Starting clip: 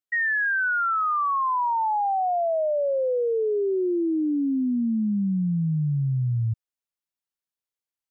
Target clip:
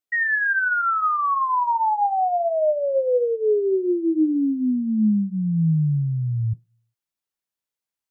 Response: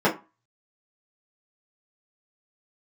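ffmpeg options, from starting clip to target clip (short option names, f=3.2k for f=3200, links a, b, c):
-filter_complex "[0:a]asplit=2[a][b];[1:a]atrim=start_sample=2205,lowshelf=f=110:g=-5,adelay=8[c];[b][c]afir=irnorm=-1:irlink=0,volume=-27.5dB[d];[a][d]amix=inputs=2:normalize=0,volume=2dB"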